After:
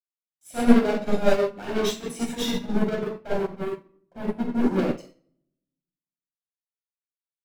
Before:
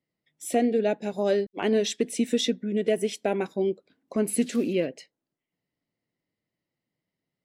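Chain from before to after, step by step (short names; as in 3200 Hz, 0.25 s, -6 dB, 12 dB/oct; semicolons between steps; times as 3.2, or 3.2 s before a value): 2.69–4.79 elliptic low-pass 980 Hz; sample leveller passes 5; reverb RT60 0.90 s, pre-delay 17 ms, DRR -3 dB; upward expander 2.5:1, over -23 dBFS; gain -8 dB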